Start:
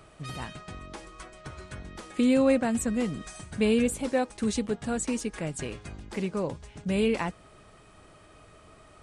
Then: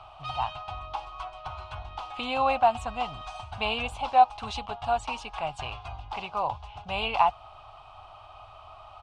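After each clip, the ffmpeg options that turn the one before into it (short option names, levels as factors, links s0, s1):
-af "firequalizer=gain_entry='entry(100,0);entry(180,-20);entry(280,-19);entry(490,-14);entry(740,14);entry(1200,7);entry(1800,-13);entry(2700,6);entry(7400,-18);entry(11000,-23)':delay=0.05:min_phase=1,volume=1.33"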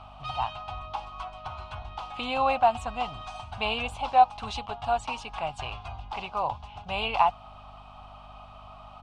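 -af "aeval=exprs='val(0)+0.00282*(sin(2*PI*50*n/s)+sin(2*PI*2*50*n/s)/2+sin(2*PI*3*50*n/s)/3+sin(2*PI*4*50*n/s)/4+sin(2*PI*5*50*n/s)/5)':c=same"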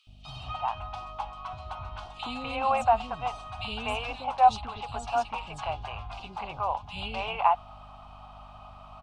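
-filter_complex "[0:a]acrossover=split=400|2900[s0][s1][s2];[s0]adelay=70[s3];[s1]adelay=250[s4];[s3][s4][s2]amix=inputs=3:normalize=0"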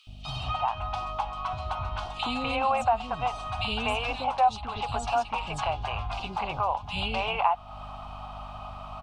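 -af "acompressor=threshold=0.0178:ratio=2,volume=2.37"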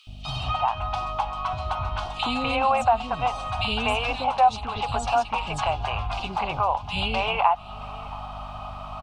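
-af "aecho=1:1:673:0.0794,volume=1.58"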